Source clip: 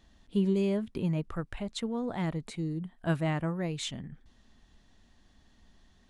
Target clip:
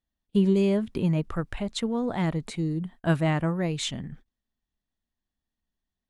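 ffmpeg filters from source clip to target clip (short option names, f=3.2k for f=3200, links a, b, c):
-af "agate=range=-31dB:threshold=-50dB:ratio=16:detection=peak,volume=5.5dB"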